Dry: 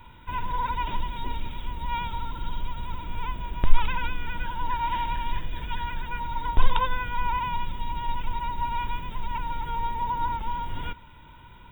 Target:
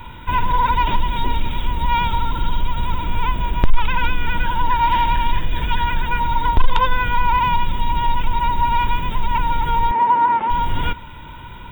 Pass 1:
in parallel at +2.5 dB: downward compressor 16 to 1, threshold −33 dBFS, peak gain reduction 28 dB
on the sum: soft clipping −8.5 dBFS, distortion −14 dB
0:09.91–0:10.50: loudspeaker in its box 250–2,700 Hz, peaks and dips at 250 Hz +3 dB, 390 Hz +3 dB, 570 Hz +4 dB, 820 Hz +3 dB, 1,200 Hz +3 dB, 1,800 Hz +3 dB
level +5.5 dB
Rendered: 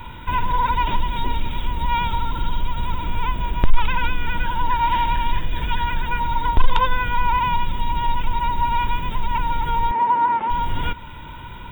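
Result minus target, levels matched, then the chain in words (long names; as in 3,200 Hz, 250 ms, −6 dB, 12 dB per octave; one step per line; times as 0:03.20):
downward compressor: peak gain reduction +8 dB
in parallel at +2.5 dB: downward compressor 16 to 1, threshold −24.5 dBFS, peak gain reduction 20 dB
on the sum: soft clipping −8.5 dBFS, distortion −14 dB
0:09.91–0:10.50: loudspeaker in its box 250–2,700 Hz, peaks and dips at 250 Hz +3 dB, 390 Hz +3 dB, 570 Hz +4 dB, 820 Hz +3 dB, 1,200 Hz +3 dB, 1,800 Hz +3 dB
level +5.5 dB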